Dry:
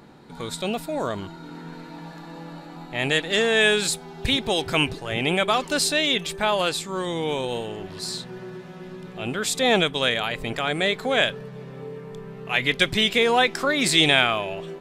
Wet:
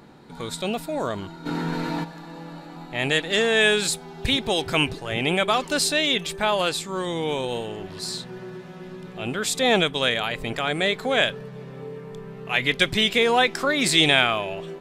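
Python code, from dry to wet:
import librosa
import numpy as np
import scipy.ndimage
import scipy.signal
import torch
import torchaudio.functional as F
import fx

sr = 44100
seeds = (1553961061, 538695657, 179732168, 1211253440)

y = fx.env_flatten(x, sr, amount_pct=50, at=(1.45, 2.03), fade=0.02)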